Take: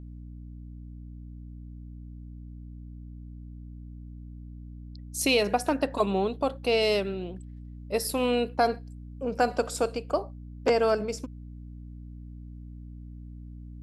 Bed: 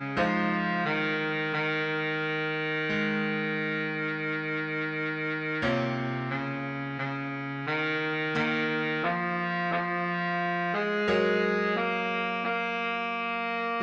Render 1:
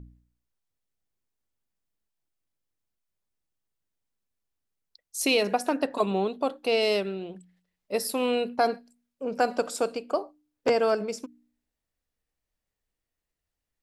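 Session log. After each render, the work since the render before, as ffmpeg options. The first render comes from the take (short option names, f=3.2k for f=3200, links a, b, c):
-af "bandreject=f=60:t=h:w=4,bandreject=f=120:t=h:w=4,bandreject=f=180:t=h:w=4,bandreject=f=240:t=h:w=4,bandreject=f=300:t=h:w=4"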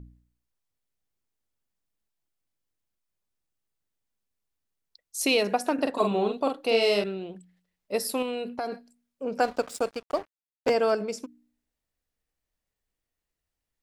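-filter_complex "[0:a]asettb=1/sr,asplit=3[a][b][c];[a]atrim=end=5.744[d];[b]atrim=start=5.74:end=7.04,asetpts=PTS-STARTPTS,afade=t=in:d=0.004:c=qsin,afade=t=out:st=1.296:d=0.004:c=qsin,asplit=2[e][f];[f]adelay=44,volume=-4.5dB[g];[e][g]amix=inputs=2:normalize=0,atrim=end_sample=57330[h];[c]atrim=start=7.036[i];[d][h]acrossfade=d=0.004:c1=hsin:c2=qsin[j];[j][i]acrossfade=d=0.004:c1=qsin:c2=hsin,asettb=1/sr,asplit=3[k][l][m];[k]atrim=end=8.224[n];[l]atrim=start=8.22:end=8.72,asetpts=PTS-STARTPTS,afade=t=in:d=0.004:c=qsin,afade=t=out:st=0.496:d=0.004:c=qsin,acompressor=threshold=-28dB:ratio=4:attack=3.2:release=140:knee=1:detection=peak[o];[m]atrim=start=8.716[p];[n][o]acrossfade=d=0.004:c1=hsin:c2=qsin[q];[q][p]acrossfade=d=0.004:c1=qsin:c2=hsin,asettb=1/sr,asplit=3[r][s][t];[r]atrim=end=9.434[u];[s]atrim=start=9.43:end=10.74,asetpts=PTS-STARTPTS,afade=t=in:d=0.004:c=qsin,afade=t=out:st=1.306:d=0.004:c=qsin,aeval=exprs='sgn(val(0))*max(abs(val(0))-0.01,0)':c=same[v];[t]atrim=start=10.736[w];[u][v]acrossfade=d=0.004:c1=hsin:c2=qsin[x];[x][w]acrossfade=d=0.004:c1=qsin:c2=hsin"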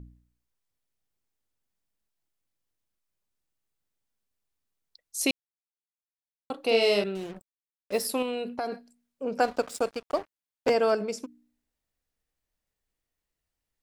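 -filter_complex "[0:a]asettb=1/sr,asplit=3[a][b][c];[a]atrim=end=7.154[d];[b]atrim=start=7.15:end=8.07,asetpts=PTS-STARTPTS,afade=t=in:d=0.004:c=qsin,afade=t=out:st=0.916:d=0.004:c=qsin,acrusher=bits=6:mix=0:aa=0.5[e];[c]atrim=start=8.066[f];[d][e]acrossfade=d=0.004:c1=hsin:c2=qsin[g];[g][f]acrossfade=d=0.004:c1=qsin:c2=hsin,asplit=3[h][i][j];[h]atrim=end=5.31,asetpts=PTS-STARTPTS,afade=t=out:st=5.306:d=0.004:c=hsin[k];[i]atrim=start=5.31:end=6.5,asetpts=PTS-STARTPTS,volume=0[l];[j]atrim=start=6.5,asetpts=PTS-STARTPTS,afade=t=in:d=0.004:c=hsin[m];[k][l][m]concat=n=3:v=0:a=1"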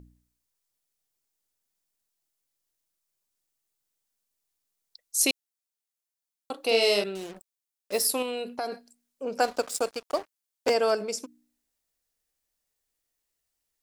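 -af "bass=f=250:g=-7,treble=f=4k:g=8"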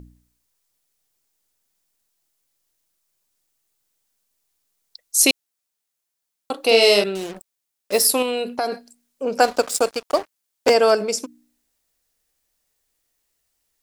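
-af "volume=8.5dB,alimiter=limit=-3dB:level=0:latency=1"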